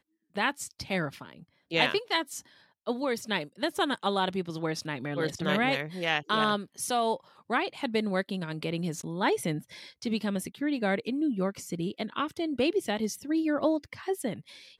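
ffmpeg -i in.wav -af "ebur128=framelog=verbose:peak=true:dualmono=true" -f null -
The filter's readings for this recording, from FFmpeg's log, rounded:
Integrated loudness:
  I:         -27.2 LUFS
  Threshold: -37.4 LUFS
Loudness range:
  LRA:         2.5 LU
  Threshold: -47.3 LUFS
  LRA low:   -28.5 LUFS
  LRA high:  -26.0 LUFS
True peak:
  Peak:      -10.2 dBFS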